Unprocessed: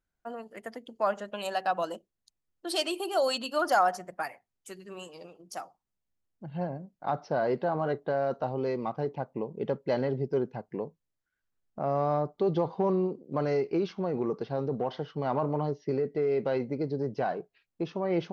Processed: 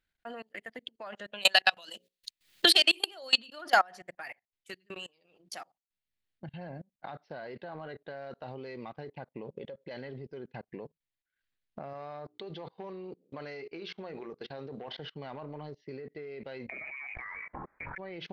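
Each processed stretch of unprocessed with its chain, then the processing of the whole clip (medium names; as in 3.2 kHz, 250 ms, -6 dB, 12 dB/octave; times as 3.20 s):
1.45–3.11 s: treble shelf 2.2 kHz +10.5 dB + hum notches 60/120/180/240/300/360/420/480/540 Hz + three bands compressed up and down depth 100%
9.48–9.91 s: small resonant body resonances 540/3400 Hz, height 13 dB, ringing for 70 ms + compression 2:1, threshold -33 dBFS
11.93–14.88 s: bass shelf 280 Hz -7 dB + hum notches 60/120/180/240/300/360/420/480 Hz
16.69–17.98 s: resonant high-pass 1.6 kHz, resonance Q 2.1 + frequency inversion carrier 2.7 kHz + level flattener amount 100%
whole clip: high-order bell 2.7 kHz +11 dB; level held to a coarse grid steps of 21 dB; transient shaper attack +2 dB, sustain -8 dB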